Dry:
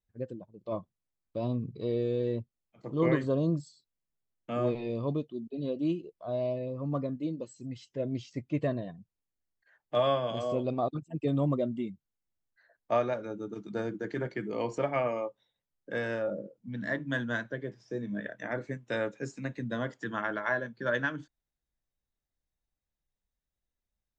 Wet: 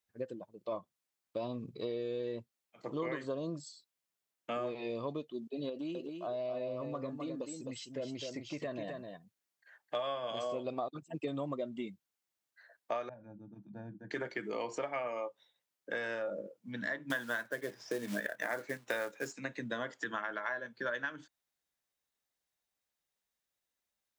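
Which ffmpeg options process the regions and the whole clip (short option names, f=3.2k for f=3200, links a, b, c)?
-filter_complex "[0:a]asettb=1/sr,asplit=3[a][b][c];[a]atrim=end=5.694[d];[b]atrim=start=5.69:end=9.95,asetpts=PTS-STARTPTS,afade=t=in:d=0.004:c=qsin,afade=t=out:st=4.256:d=0.004:c=qsin,acompressor=threshold=-33dB:ratio=6:attack=3.2:release=140:knee=1:detection=peak,aecho=1:1:259:0.501,atrim=end_sample=187866[e];[c]atrim=start=9.946[f];[d][e]acrossfade=d=0.004:c1=hsin:c2=qsin[g];[g][f]acrossfade=d=0.004:c1=qsin:c2=hsin,asettb=1/sr,asplit=3[h][i][j];[h]atrim=end=13.094[k];[i]atrim=start=13.09:end=14.11,asetpts=PTS-STARTPTS,afade=t=in:d=0.004:c=qsin,afade=t=out:st=1.016:d=0.004:c=qsin,bandpass=f=110:t=q:w=1.2,aecho=1:1:1.2:0.81,atrim=end_sample=44982[l];[j]atrim=start=14.106[m];[k][l]acrossfade=d=0.004:c1=hsin:c2=qsin[n];[n][m]acrossfade=d=0.004:c1=qsin:c2=hsin,asettb=1/sr,asplit=3[o][p][q];[o]atrim=end=17.104[r];[p]atrim=start=17.1:end=19.33,asetpts=PTS-STARTPTS,afade=t=in:d=0.004:c=qsin,afade=t=out:st=2.226:d=0.004:c=qsin,equalizer=f=950:t=o:w=2.7:g=5,acontrast=23,acrusher=bits=5:mode=log:mix=0:aa=0.000001[s];[q]atrim=start=19.326[t];[r][s]acrossfade=d=0.004:c1=hsin:c2=qsin[u];[u][t]acrossfade=d=0.004:c1=qsin:c2=hsin,highpass=f=730:p=1,acompressor=threshold=-40dB:ratio=6,volume=6dB"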